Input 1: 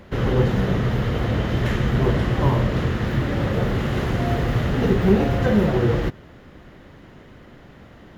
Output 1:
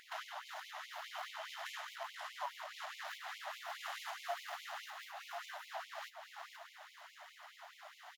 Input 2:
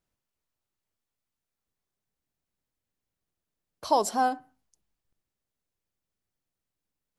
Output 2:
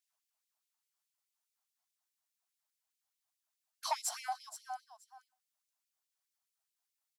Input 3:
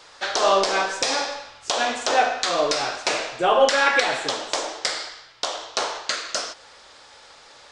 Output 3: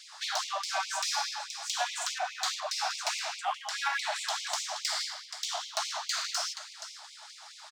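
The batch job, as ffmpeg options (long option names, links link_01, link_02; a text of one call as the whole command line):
ffmpeg -i in.wav -filter_complex "[0:a]aeval=exprs='if(lt(val(0),0),0.708*val(0),val(0))':channel_layout=same,equalizer=frequency=2100:width=0.49:gain=-13,asplit=2[link_01][link_02];[link_02]aecho=0:1:476|952:0.141|0.024[link_03];[link_01][link_03]amix=inputs=2:normalize=0,acompressor=threshold=-30dB:ratio=10,asplit=2[link_04][link_05];[link_05]highpass=frequency=720:poles=1,volume=20dB,asoftclip=type=tanh:threshold=-13dB[link_06];[link_04][link_06]amix=inputs=2:normalize=0,lowpass=frequency=4900:poles=1,volume=-6dB,afftfilt=real='re*gte(b*sr/1024,590*pow(2100/590,0.5+0.5*sin(2*PI*4.8*pts/sr)))':imag='im*gte(b*sr/1024,590*pow(2100/590,0.5+0.5*sin(2*PI*4.8*pts/sr)))':win_size=1024:overlap=0.75,volume=-3dB" out.wav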